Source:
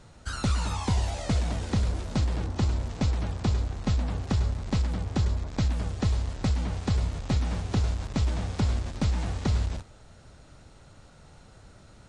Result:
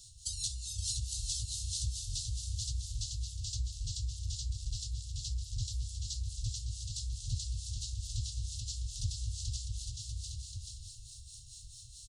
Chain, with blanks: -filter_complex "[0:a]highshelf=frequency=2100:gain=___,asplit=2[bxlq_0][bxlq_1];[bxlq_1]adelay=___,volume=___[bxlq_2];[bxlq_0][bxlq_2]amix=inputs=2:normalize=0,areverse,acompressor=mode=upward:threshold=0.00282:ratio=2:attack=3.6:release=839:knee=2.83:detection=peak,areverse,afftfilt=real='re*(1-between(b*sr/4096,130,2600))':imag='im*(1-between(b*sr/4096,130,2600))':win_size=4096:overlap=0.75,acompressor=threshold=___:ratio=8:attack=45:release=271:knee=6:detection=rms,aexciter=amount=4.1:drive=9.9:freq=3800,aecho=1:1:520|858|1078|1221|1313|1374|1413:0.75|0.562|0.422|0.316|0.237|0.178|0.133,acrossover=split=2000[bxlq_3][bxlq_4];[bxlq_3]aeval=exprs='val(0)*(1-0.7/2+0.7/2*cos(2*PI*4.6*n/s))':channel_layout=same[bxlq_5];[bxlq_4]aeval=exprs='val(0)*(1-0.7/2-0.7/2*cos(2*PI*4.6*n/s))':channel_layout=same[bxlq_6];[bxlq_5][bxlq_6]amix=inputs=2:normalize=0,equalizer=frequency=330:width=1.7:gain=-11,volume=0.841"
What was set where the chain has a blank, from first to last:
-7.5, 46, 0.251, 0.0158